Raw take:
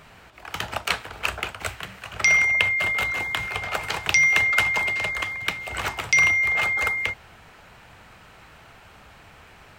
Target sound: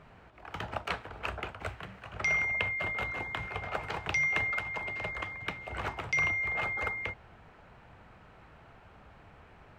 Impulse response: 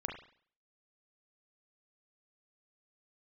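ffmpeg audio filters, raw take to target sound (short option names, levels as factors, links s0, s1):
-filter_complex "[0:a]lowpass=f=1000:p=1,asettb=1/sr,asplit=3[s0][s1][s2];[s0]atrim=end=4.584[s3];[s1]atrim=start=4.58:end=5.05,asetpts=PTS-STARTPTS,afade=t=in:d=0.004:c=qsin,afade=t=out:st=0.466:d=0.004:c=qsin,acompressor=threshold=0.0355:ratio=6[s4];[s2]atrim=start=5.046[s5];[s3][s4]acrossfade=d=0.004:c1=hsin:c2=qsin[s6];[s6][s5]acrossfade=d=0.004:c1=qsin:c2=hsin,volume=0.668"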